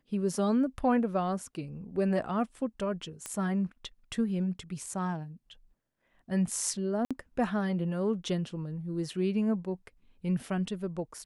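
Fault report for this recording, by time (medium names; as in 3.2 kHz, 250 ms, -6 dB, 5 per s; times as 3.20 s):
3.26 s: pop -20 dBFS
7.05–7.11 s: dropout 56 ms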